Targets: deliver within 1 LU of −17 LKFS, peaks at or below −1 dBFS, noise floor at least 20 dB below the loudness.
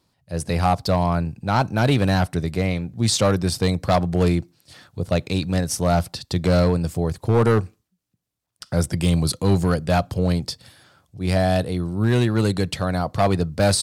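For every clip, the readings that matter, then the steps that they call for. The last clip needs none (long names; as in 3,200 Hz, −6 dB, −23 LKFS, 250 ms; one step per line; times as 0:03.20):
share of clipped samples 0.8%; peaks flattened at −10.5 dBFS; integrated loudness −21.5 LKFS; sample peak −10.5 dBFS; target loudness −17.0 LKFS
→ clipped peaks rebuilt −10.5 dBFS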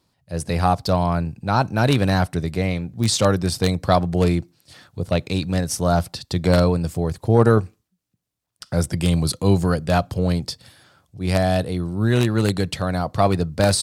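share of clipped samples 0.0%; integrated loudness −21.0 LKFS; sample peak −1.5 dBFS; target loudness −17.0 LKFS
→ level +4 dB
brickwall limiter −1 dBFS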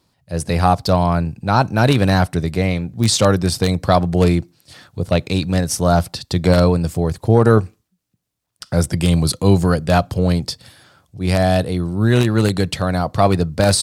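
integrated loudness −17.0 LKFS; sample peak −1.0 dBFS; background noise floor −70 dBFS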